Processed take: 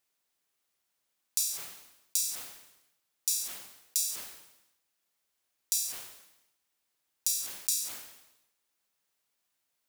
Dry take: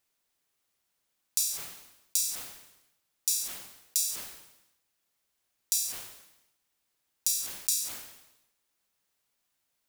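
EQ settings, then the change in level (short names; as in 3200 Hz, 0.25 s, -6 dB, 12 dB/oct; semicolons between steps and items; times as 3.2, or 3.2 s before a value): low shelf 180 Hz -6 dB; -1.5 dB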